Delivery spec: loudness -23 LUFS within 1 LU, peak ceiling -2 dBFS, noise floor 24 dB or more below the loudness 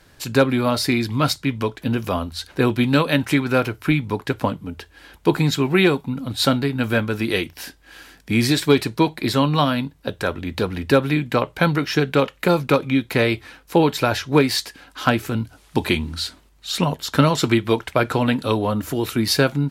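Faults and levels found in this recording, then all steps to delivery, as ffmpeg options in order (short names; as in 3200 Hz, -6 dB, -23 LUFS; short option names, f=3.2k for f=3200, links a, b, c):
loudness -20.5 LUFS; peak -1.5 dBFS; loudness target -23.0 LUFS
-> -af "volume=-2.5dB"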